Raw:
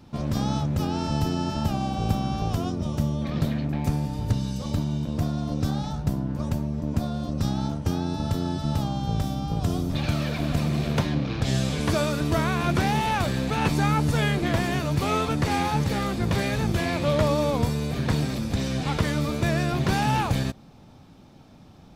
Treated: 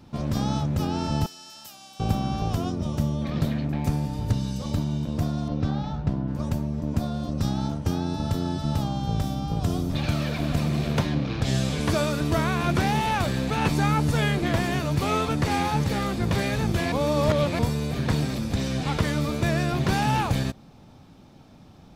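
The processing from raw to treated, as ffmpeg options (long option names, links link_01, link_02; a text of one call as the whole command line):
ffmpeg -i in.wav -filter_complex "[0:a]asettb=1/sr,asplit=3[link_01][link_02][link_03];[link_01]atrim=end=1.264[link_04];[link_02]atrim=start=1.26:end=2,asetpts=PTS-STARTPTS,afade=type=in:duration=0.004:curve=qsin,afade=type=out:start_time=0.736:duration=0.004:curve=qsin,aderivative[link_05];[link_03]atrim=start=1.996[link_06];[link_04][link_05]acrossfade=duration=0.004:curve1=hsin:curve2=qsin[link_07];[link_07][link_06]acrossfade=duration=0.004:curve1=qsin:curve2=hsin,asettb=1/sr,asplit=3[link_08][link_09][link_10];[link_08]atrim=end=5.484[link_11];[link_09]atrim=start=5.48:end=6.28,asetpts=PTS-STARTPTS,afade=type=in:duration=0.004:curve=qsin,afade=type=out:start_time=0.796:duration=0.004:curve=qsin,lowpass=3500[link_12];[link_10]atrim=start=6.276[link_13];[link_11][link_12]acrossfade=duration=0.004:curve1=hsin:curve2=qsin[link_14];[link_14][link_13]acrossfade=duration=0.004:curve1=qsin:curve2=hsin,asplit=3[link_15][link_16][link_17];[link_15]atrim=end=16.922[link_18];[link_16]atrim=start=16.918:end=17.592,asetpts=PTS-STARTPTS,areverse[link_19];[link_17]atrim=start=17.588[link_20];[link_18][link_19]acrossfade=duration=0.004:curve1=hsin:curve2=hsin[link_21];[link_21][link_20]acrossfade=duration=0.004:curve1=hsin:curve2=hsin" out.wav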